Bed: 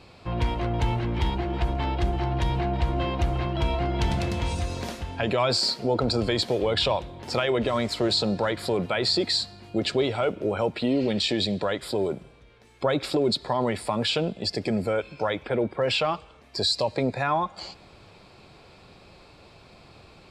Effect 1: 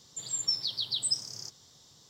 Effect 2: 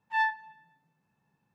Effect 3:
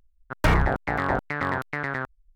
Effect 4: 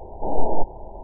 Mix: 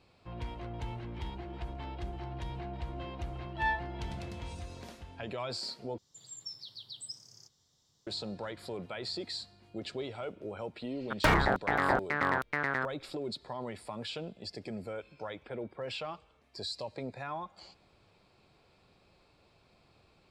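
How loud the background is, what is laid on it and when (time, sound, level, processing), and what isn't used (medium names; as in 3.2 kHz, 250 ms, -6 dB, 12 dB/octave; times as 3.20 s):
bed -14.5 dB
3.46 s: add 2 -8.5 dB + comb 6.8 ms
5.98 s: replace with 1 -14.5 dB + bass shelf 78 Hz +10.5 dB
10.80 s: add 3 -2 dB + bass shelf 160 Hz -10 dB
not used: 4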